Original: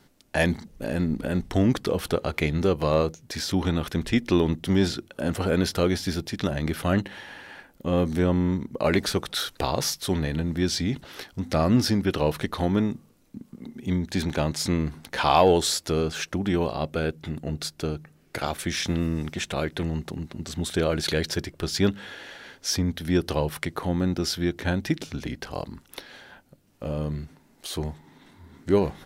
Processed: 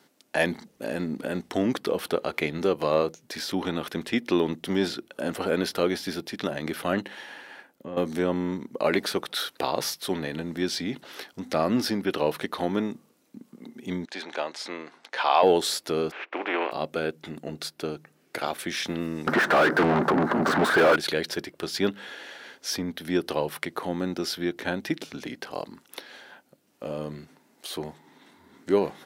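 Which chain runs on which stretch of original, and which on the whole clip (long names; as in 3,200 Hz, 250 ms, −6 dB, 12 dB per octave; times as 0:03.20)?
0:07.15–0:07.97: downward compressor 16 to 1, threshold −32 dBFS + multiband upward and downward expander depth 70%
0:14.05–0:15.43: high-pass filter 530 Hz + high-frequency loss of the air 81 metres
0:16.10–0:16.71: compressing power law on the bin magnitudes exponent 0.44 + Chebyshev band-pass filter 310–2,500 Hz, order 3
0:19.27–0:20.96: high shelf with overshoot 2,000 Hz −9.5 dB, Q 3 + mid-hump overdrive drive 41 dB, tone 1,400 Hz, clips at −10 dBFS
whole clip: high-pass filter 260 Hz 12 dB per octave; dynamic equaliser 6,900 Hz, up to −6 dB, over −48 dBFS, Q 1.4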